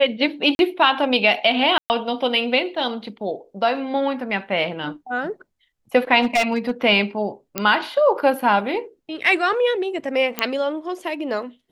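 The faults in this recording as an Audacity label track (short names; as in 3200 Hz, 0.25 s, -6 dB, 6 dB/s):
0.550000	0.590000	gap 41 ms
1.780000	1.900000	gap 0.119 s
2.750000	2.750000	gap 2.3 ms
6.210000	6.710000	clipped -14.5 dBFS
7.580000	7.580000	pop -5 dBFS
10.390000	10.390000	pop -5 dBFS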